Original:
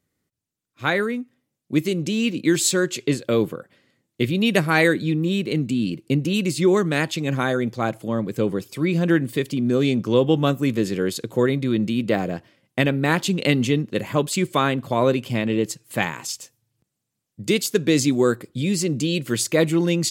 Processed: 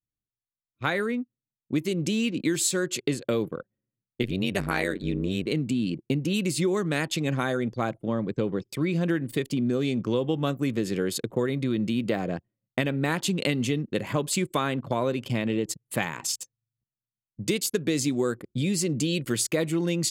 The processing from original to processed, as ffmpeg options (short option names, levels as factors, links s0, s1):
-filter_complex "[0:a]asplit=3[s0][s1][s2];[s0]afade=t=out:st=4.22:d=0.02[s3];[s1]tremolo=f=94:d=0.919,afade=t=in:st=4.22:d=0.02,afade=t=out:st=5.45:d=0.02[s4];[s2]afade=t=in:st=5.45:d=0.02[s5];[s3][s4][s5]amix=inputs=3:normalize=0,asettb=1/sr,asplit=3[s6][s7][s8];[s6]atrim=end=8.034[s9];[s7]atrim=start=8.03:end=8.68,asetpts=PTS-STARTPTS,afade=t=in:d=0.004:c=qsin,afade=t=out:st=0.646:d=0.004:c=qsin,lowpass=6800[s10];[s8]atrim=start=8.676[s11];[s9][s10]acrossfade=d=0.004:c1=hsin:c2=qsin[s12];[s12][s11]acrossfade=d=0.004:c1=qsin:c2=hsin,anlmdn=1,adynamicequalizer=threshold=0.00708:dfrequency=9800:dqfactor=1.3:tfrequency=9800:tqfactor=1.3:attack=5:release=100:ratio=0.375:range=2:mode=boostabove:tftype=bell,acompressor=threshold=0.0708:ratio=4"